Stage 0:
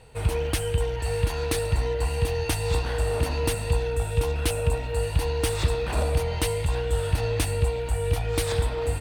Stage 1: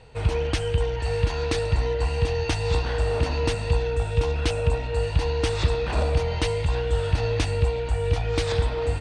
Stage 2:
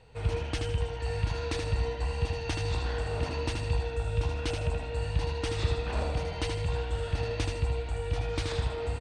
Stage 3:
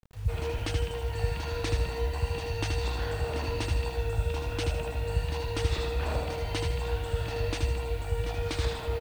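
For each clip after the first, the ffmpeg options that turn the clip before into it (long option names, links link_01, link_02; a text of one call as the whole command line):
ffmpeg -i in.wav -af "lowpass=frequency=6700:width=0.5412,lowpass=frequency=6700:width=1.3066,volume=1.5dB" out.wav
ffmpeg -i in.wav -af "aecho=1:1:78|156|234|312:0.562|0.202|0.0729|0.0262,volume=-7.5dB" out.wav
ffmpeg -i in.wav -filter_complex "[0:a]acrossover=split=160[link_01][link_02];[link_02]adelay=130[link_03];[link_01][link_03]amix=inputs=2:normalize=0,acrusher=bits=8:mix=0:aa=0.000001,volume=1dB" out.wav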